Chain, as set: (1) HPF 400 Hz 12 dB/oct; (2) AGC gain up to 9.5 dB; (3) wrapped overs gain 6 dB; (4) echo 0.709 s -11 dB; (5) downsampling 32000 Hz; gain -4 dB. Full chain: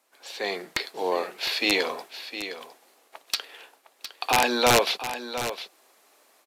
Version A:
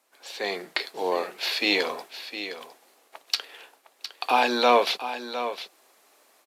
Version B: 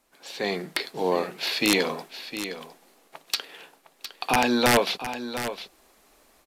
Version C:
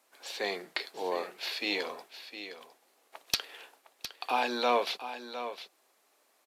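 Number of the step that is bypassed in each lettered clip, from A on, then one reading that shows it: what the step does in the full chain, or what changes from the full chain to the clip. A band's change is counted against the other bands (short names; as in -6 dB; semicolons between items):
3, distortion -4 dB; 1, 250 Hz band +6.5 dB; 2, crest factor change +6.0 dB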